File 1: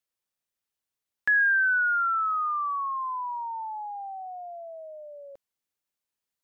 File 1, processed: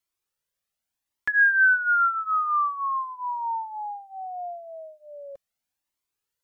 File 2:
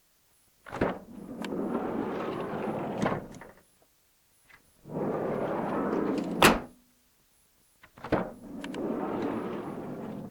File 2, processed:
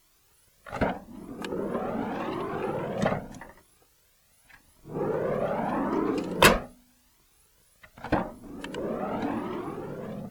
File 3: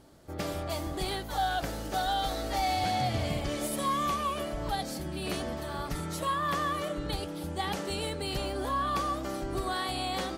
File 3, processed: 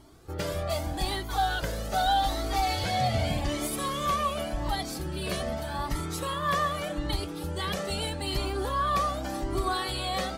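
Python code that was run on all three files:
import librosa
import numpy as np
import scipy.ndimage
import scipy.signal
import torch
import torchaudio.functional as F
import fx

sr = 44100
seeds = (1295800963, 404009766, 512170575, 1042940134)

y = fx.comb_cascade(x, sr, direction='rising', hz=0.84)
y = y * librosa.db_to_amplitude(7.0)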